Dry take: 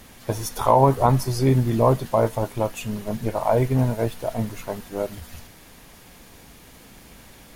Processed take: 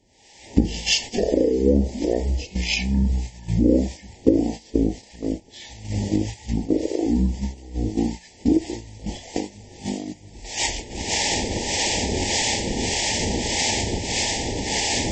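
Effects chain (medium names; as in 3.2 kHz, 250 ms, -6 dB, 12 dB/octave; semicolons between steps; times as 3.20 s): recorder AGC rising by 76 dB/s; high-pass 170 Hz 6 dB/octave; peaking EQ 270 Hz -14 dB 0.34 oct; hum notches 50/100/150/200/250/300/350 Hz; harmonic tremolo 3.3 Hz, depth 70%, crossover 1.2 kHz; in parallel at -9.5 dB: saturation -16 dBFS, distortion -14 dB; on the sum: elliptic band-stop 1.8–3.7 kHz, stop band 40 dB; gate -25 dBFS, range -13 dB; speed mistake 15 ips tape played at 7.5 ips; trim +1 dB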